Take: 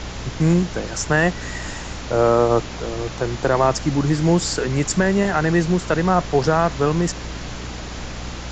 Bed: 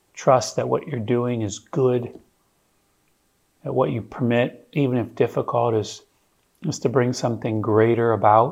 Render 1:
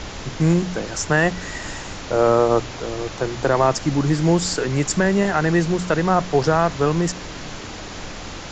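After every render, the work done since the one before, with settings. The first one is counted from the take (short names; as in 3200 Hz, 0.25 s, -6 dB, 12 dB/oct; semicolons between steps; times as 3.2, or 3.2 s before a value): de-hum 60 Hz, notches 4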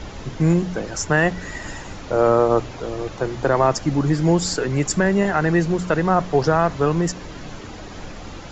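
denoiser 8 dB, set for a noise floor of -34 dBFS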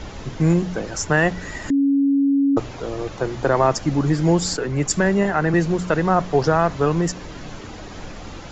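1.7–2.57 bleep 278 Hz -14 dBFS; 4.57–5.54 three-band expander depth 40%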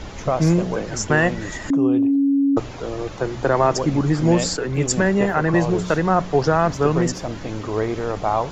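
add bed -6 dB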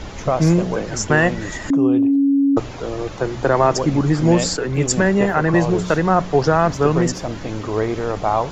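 gain +2 dB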